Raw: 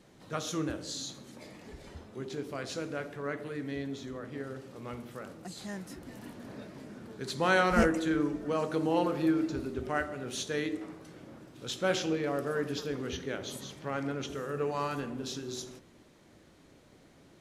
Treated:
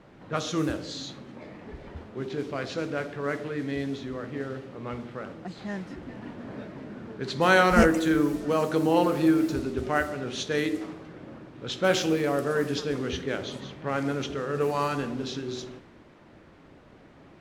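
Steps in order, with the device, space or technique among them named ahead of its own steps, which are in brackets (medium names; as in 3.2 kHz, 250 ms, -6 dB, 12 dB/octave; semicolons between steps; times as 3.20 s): cassette deck with a dynamic noise filter (white noise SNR 22 dB; level-controlled noise filter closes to 1.5 kHz, open at -27 dBFS); trim +6 dB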